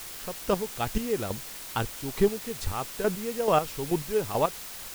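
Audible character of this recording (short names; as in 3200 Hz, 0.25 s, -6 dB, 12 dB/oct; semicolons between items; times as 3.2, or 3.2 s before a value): chopped level 2.3 Hz, depth 65%, duty 25%; a quantiser's noise floor 8-bit, dither triangular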